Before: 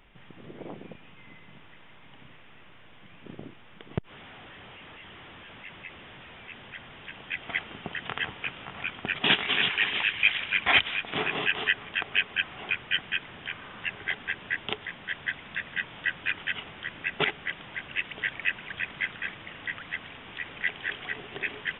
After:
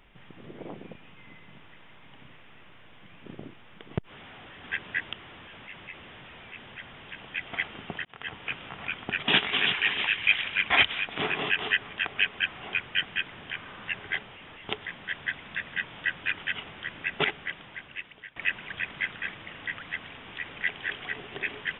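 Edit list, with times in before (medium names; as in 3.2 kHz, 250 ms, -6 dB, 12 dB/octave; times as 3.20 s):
4.63–5.09 s: swap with 14.19–14.69 s
8.01–8.44 s: fade in
17.29–18.36 s: fade out, to -21 dB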